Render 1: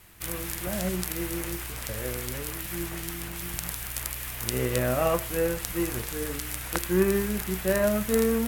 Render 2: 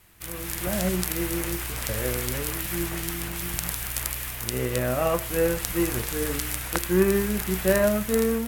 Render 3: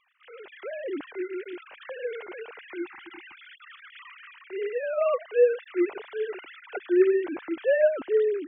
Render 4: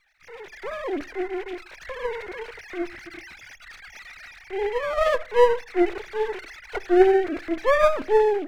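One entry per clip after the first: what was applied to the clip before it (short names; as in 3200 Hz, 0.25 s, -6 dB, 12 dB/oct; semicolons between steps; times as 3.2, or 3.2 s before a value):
AGC; gain -3.5 dB
sine-wave speech; spectral delete 2.79–4.12, 380–760 Hz; gain -2 dB
minimum comb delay 0.49 ms; on a send at -18.5 dB: reverb RT60 0.40 s, pre-delay 5 ms; on the sum: gain +5.5 dB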